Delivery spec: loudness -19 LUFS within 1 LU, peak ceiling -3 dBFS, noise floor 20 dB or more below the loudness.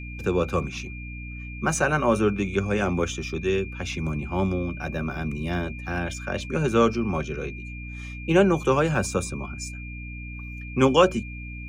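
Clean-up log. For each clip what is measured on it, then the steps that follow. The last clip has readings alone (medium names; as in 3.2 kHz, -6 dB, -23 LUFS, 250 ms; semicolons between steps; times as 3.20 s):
hum 60 Hz; highest harmonic 300 Hz; hum level -35 dBFS; steady tone 2.4 kHz; tone level -40 dBFS; loudness -25.0 LUFS; peak level -5.5 dBFS; loudness target -19.0 LUFS
-> de-hum 60 Hz, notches 5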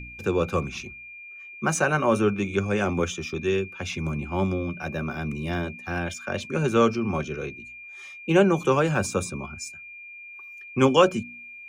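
hum not found; steady tone 2.4 kHz; tone level -40 dBFS
-> band-stop 2.4 kHz, Q 30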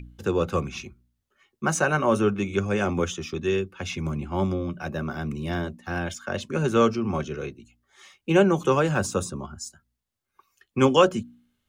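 steady tone not found; loudness -25.5 LUFS; peak level -5.0 dBFS; loudness target -19.0 LUFS
-> trim +6.5 dB; peak limiter -3 dBFS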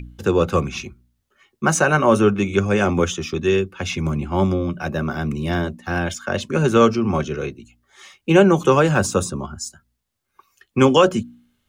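loudness -19.5 LUFS; peak level -3.0 dBFS; noise floor -74 dBFS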